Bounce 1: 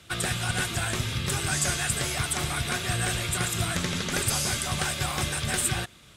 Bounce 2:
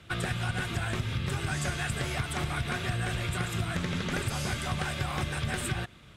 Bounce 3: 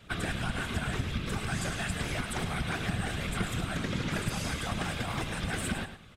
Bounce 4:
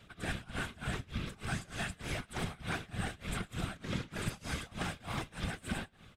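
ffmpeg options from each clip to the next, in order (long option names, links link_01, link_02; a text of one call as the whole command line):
ffmpeg -i in.wav -af "bass=frequency=250:gain=3,treble=frequency=4000:gain=-11,acompressor=threshold=-27dB:ratio=6" out.wav
ffmpeg -i in.wav -filter_complex "[0:a]afftfilt=real='hypot(re,im)*cos(2*PI*random(0))':imag='hypot(re,im)*sin(2*PI*random(1))':win_size=512:overlap=0.75,asplit=2[link_01][link_02];[link_02]aecho=0:1:106|212|318:0.299|0.0687|0.0158[link_03];[link_01][link_03]amix=inputs=2:normalize=0,volume=4.5dB" out.wav
ffmpeg -i in.wav -af "tremolo=f=3.3:d=0.95,volume=-2.5dB" out.wav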